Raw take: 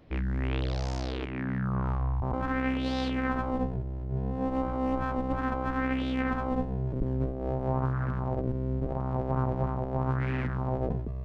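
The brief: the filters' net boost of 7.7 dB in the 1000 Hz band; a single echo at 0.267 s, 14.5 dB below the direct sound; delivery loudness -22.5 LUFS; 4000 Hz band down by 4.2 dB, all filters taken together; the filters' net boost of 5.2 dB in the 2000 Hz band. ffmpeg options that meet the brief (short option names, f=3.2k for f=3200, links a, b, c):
-af "equalizer=f=1k:t=o:g=9,equalizer=f=2k:t=o:g=5,equalizer=f=4k:t=o:g=-9,aecho=1:1:267:0.188,volume=6dB"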